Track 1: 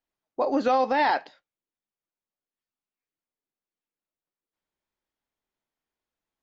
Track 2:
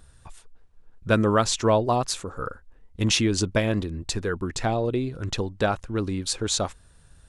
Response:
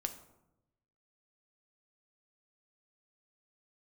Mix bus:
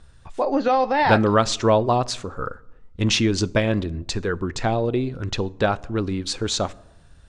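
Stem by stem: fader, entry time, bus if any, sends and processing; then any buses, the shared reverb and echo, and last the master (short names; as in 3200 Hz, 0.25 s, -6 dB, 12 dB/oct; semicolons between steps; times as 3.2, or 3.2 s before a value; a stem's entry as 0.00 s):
+1.5 dB, 0.00 s, send -14 dB, dry
+0.5 dB, 0.00 s, send -9.5 dB, dry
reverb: on, RT60 0.90 s, pre-delay 5 ms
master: LPF 5900 Hz 12 dB/oct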